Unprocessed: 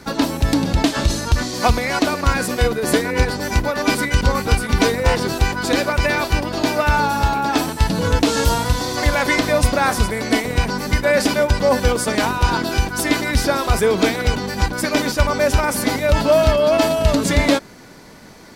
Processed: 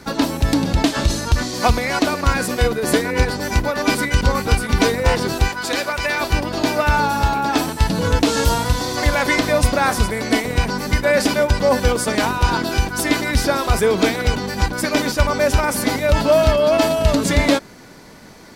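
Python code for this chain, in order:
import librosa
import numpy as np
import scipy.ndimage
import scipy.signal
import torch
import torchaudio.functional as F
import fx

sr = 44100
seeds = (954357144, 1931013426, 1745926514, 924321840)

y = fx.low_shelf(x, sr, hz=430.0, db=-11.0, at=(5.48, 6.21))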